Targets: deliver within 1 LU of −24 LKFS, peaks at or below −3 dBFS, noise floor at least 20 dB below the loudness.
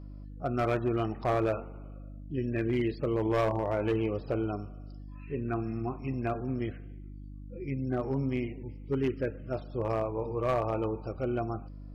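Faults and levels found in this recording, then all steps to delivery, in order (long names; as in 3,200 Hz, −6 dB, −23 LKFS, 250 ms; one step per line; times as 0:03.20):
share of clipped samples 0.9%; peaks flattened at −22.0 dBFS; mains hum 50 Hz; hum harmonics up to 300 Hz; level of the hum −42 dBFS; integrated loudness −32.0 LKFS; sample peak −22.0 dBFS; target loudness −24.0 LKFS
→ clipped peaks rebuilt −22 dBFS
hum removal 50 Hz, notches 6
level +8 dB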